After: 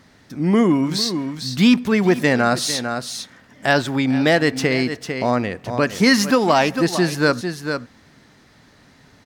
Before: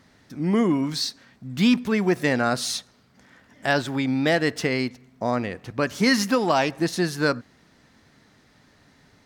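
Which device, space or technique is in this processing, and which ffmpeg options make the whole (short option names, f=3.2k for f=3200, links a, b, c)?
ducked delay: -filter_complex "[0:a]asplit=3[a][b][c];[b]adelay=450,volume=-7dB[d];[c]apad=whole_len=427941[e];[d][e]sidechaincompress=threshold=-30dB:ratio=8:attack=12:release=114[f];[a][f]amix=inputs=2:normalize=0,volume=5dB"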